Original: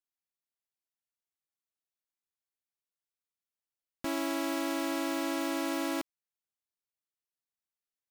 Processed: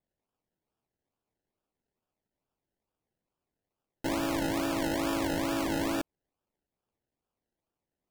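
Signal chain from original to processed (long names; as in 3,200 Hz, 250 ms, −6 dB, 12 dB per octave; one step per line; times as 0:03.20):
in parallel at −3 dB: brickwall limiter −33.5 dBFS, peak gain reduction 9 dB
on the sum: sample-and-hold swept by an LFO 30×, swing 60% 2.3 Hz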